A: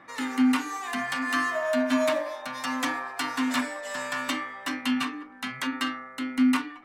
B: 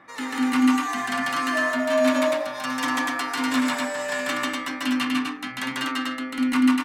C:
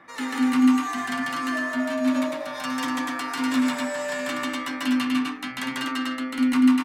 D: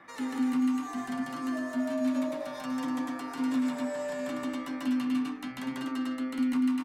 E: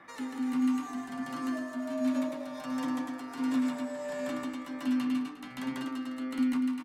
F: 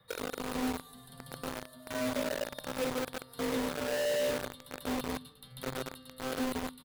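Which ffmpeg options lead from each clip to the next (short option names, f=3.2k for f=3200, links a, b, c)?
-af "aecho=1:1:142.9|244.9:1|0.794"
-filter_complex "[0:a]acrossover=split=360[a][b];[b]acompressor=threshold=-27dB:ratio=6[c];[a][c]amix=inputs=2:normalize=0,asplit=2[d][e];[e]adelay=12,volume=-11dB[f];[d][f]amix=inputs=2:normalize=0"
-filter_complex "[0:a]acrossover=split=810|4500[a][b][c];[a]acompressor=threshold=-23dB:ratio=4[d];[b]acompressor=threshold=-44dB:ratio=4[e];[c]acompressor=threshold=-51dB:ratio=4[f];[d][e][f]amix=inputs=3:normalize=0,volume=-2.5dB"
-af "tremolo=f=1.4:d=0.44,aecho=1:1:356:0.158"
-filter_complex "[0:a]firequalizer=gain_entry='entry(120,0);entry(290,-19);entry(460,13);entry(670,-12);entry(950,-19);entry(2400,-27);entry(3700,-2);entry(6300,-27);entry(9700,0)':delay=0.05:min_phase=1,acrossover=split=190|870|1400[a][b][c][d];[b]acrusher=bits=6:mix=0:aa=0.000001[e];[a][e][c][d]amix=inputs=4:normalize=0,volume=7.5dB"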